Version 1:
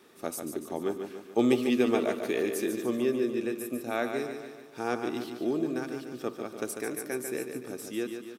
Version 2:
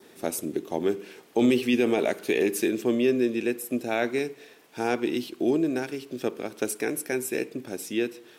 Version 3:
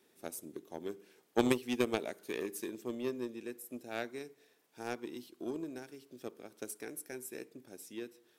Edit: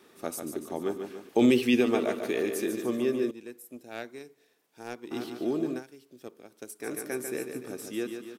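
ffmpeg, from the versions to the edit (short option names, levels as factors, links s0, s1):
-filter_complex "[2:a]asplit=2[s0][s1];[0:a]asplit=4[s2][s3][s4][s5];[s2]atrim=end=1.292[s6];[1:a]atrim=start=1.288:end=1.812[s7];[s3]atrim=start=1.808:end=3.312[s8];[s0]atrim=start=3.308:end=5.112[s9];[s4]atrim=start=5.108:end=5.83[s10];[s1]atrim=start=5.73:end=6.89[s11];[s5]atrim=start=6.79[s12];[s6][s7]acrossfade=d=0.004:c1=hsin:c2=hsin[s13];[s13][s8]acrossfade=d=0.004:c1=hsin:c2=hsin[s14];[s14][s9]acrossfade=d=0.004:c1=hsin:c2=hsin[s15];[s15][s10]acrossfade=d=0.004:c1=hsin:c2=hsin[s16];[s16][s11]acrossfade=d=0.1:c1=tri:c2=tri[s17];[s17][s12]acrossfade=d=0.1:c1=tri:c2=tri"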